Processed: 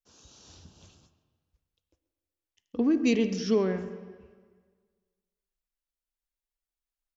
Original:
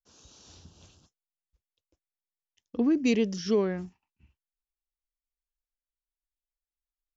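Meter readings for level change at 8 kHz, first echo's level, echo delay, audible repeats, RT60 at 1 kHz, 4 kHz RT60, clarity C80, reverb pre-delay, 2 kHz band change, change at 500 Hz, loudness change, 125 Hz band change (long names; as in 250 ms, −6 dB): can't be measured, −18.0 dB, 135 ms, 1, 1.6 s, 1.5 s, 11.5 dB, 7 ms, +0.5 dB, +0.5 dB, +0.5 dB, +0.5 dB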